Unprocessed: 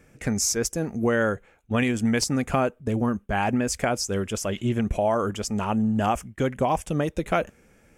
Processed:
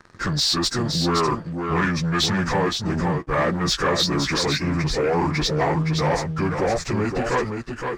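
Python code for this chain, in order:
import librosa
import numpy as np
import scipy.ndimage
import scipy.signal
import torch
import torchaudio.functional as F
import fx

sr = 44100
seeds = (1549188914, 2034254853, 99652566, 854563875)

p1 = fx.pitch_bins(x, sr, semitones=-5.5)
p2 = fx.peak_eq(p1, sr, hz=73.0, db=-14.0, octaves=0.3)
p3 = fx.notch(p2, sr, hz=610.0, q=12.0)
p4 = fx.over_compress(p3, sr, threshold_db=-30.0, ratio=-1.0)
p5 = p3 + (p4 * librosa.db_to_amplitude(0.0))
p6 = fx.leveller(p5, sr, passes=2)
p7 = fx.lowpass(p6, sr, hz=1300.0, slope=6)
p8 = fx.tilt_shelf(p7, sr, db=-8.0, hz=970.0)
y = p8 + fx.echo_single(p8, sr, ms=517, db=-5.5, dry=0)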